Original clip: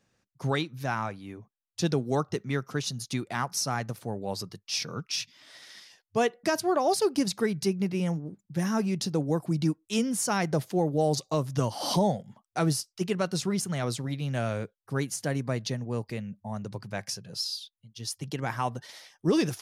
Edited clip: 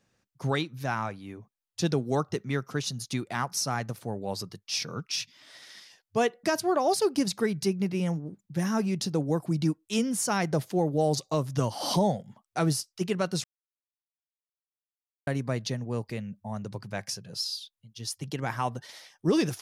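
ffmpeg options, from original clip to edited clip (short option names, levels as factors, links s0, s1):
-filter_complex "[0:a]asplit=3[s0][s1][s2];[s0]atrim=end=13.44,asetpts=PTS-STARTPTS,afade=t=out:st=13.436:d=0.004:c=hsin[s3];[s1]atrim=start=13.44:end=15.27,asetpts=PTS-STARTPTS,volume=0[s4];[s2]atrim=start=15.27,asetpts=PTS-STARTPTS,afade=t=in:d=0.004:c=hsin[s5];[s3][s4][s5]concat=n=3:v=0:a=1"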